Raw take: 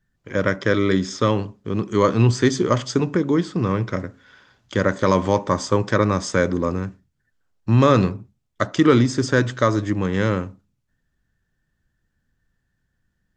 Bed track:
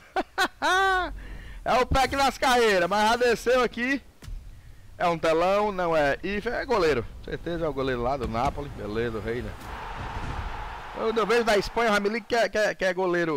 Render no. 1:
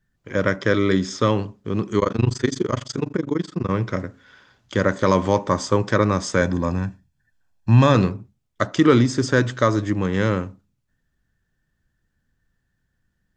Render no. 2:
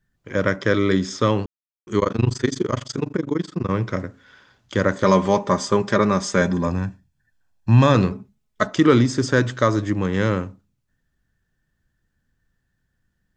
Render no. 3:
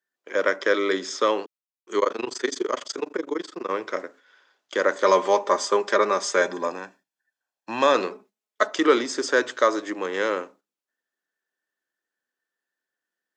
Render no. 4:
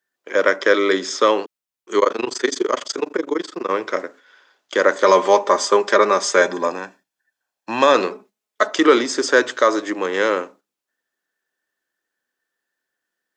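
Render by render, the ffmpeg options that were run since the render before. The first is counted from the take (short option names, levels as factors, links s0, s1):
-filter_complex "[0:a]asettb=1/sr,asplit=3[s0][s1][s2];[s0]atrim=end=1.994[s3];[s1]atrim=start=1.99:end=3.71,asetpts=PTS-STARTPTS,afade=t=in:d=0.004:c=qsin,afade=t=out:st=1.716:d=0.004:c=qsin,tremolo=f=24:d=0.974[s4];[s2]atrim=start=3.706[s5];[s3][s4]acrossfade=d=0.004:c1=hsin:c2=qsin[s6];[s6][s5]acrossfade=d=0.004:c1=qsin:c2=hsin,asettb=1/sr,asplit=3[s7][s8][s9];[s7]atrim=end=6.414[s10];[s8]atrim=start=6.41:end=7.95,asetpts=PTS-STARTPTS,afade=t=in:d=0.004:c=qsin,afade=t=out:st=1.536:d=0.004:c=qsin,aecho=1:1:1.2:0.56,atrim=end_sample=67914[s11];[s9]atrim=start=7.946[s12];[s10][s11]acrossfade=d=0.004:c1=hsin:c2=qsin[s13];[s13][s12]acrossfade=d=0.004:c1=qsin:c2=hsin"
-filter_complex "[0:a]asettb=1/sr,asplit=3[s0][s1][s2];[s0]atrim=end=5.044[s3];[s1]atrim=start=5.04:end=6.67,asetpts=PTS-STARTPTS,afade=t=in:d=0.004:c=qsin,afade=t=out:st=1.626:d=0.004:c=qsin,aecho=1:1:5:0.56,atrim=end_sample=71883[s4];[s2]atrim=start=6.666[s5];[s3][s4]acrossfade=d=0.004:c1=hsin:c2=qsin[s6];[s6][s5]acrossfade=d=0.004:c1=qsin:c2=hsin,asettb=1/sr,asplit=3[s7][s8][s9];[s7]atrim=end=8.114[s10];[s8]atrim=start=8.11:end=8.74,asetpts=PTS-STARTPTS,afade=t=in:d=0.004:c=qsin,afade=t=out:st=0.626:d=0.004:c=qsin,aecho=1:1:4.7:0.65,atrim=end_sample=27783[s11];[s9]atrim=start=8.736[s12];[s10][s11]acrossfade=d=0.004:c1=hsin:c2=qsin[s13];[s13][s12]acrossfade=d=0.004:c1=qsin:c2=hsin,asplit=3[s14][s15][s16];[s14]atrim=end=1.46,asetpts=PTS-STARTPTS,afade=t=out:st=1.456:d=0.004:c=hsin[s17];[s15]atrim=start=1.46:end=1.87,asetpts=PTS-STARTPTS,volume=0[s18];[s16]atrim=start=1.87,asetpts=PTS-STARTPTS,afade=t=in:d=0.004:c=hsin[s19];[s17][s18][s19]concat=n=3:v=0:a=1"
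-af "agate=range=0.447:threshold=0.00794:ratio=16:detection=peak,highpass=f=370:w=0.5412,highpass=f=370:w=1.3066"
-af "volume=2,alimiter=limit=0.794:level=0:latency=1"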